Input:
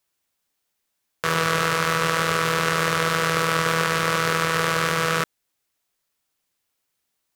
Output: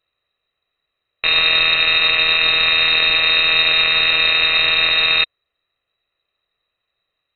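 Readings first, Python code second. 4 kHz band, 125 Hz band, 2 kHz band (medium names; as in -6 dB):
+16.0 dB, -12.0 dB, +8.0 dB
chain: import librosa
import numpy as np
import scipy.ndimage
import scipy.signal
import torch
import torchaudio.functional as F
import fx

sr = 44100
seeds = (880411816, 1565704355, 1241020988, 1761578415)

y = scipy.signal.sosfilt(scipy.signal.cheby1(2, 1.0, [150.0, 1100.0], 'bandstop', fs=sr, output='sos'), x)
y = fx.low_shelf(y, sr, hz=340.0, db=11.5)
y = y + 0.57 * np.pad(y, (int(1.5 * sr / 1000.0), 0))[:len(y)]
y = fx.freq_invert(y, sr, carrier_hz=3900)
y = F.gain(torch.from_numpy(y), 4.0).numpy()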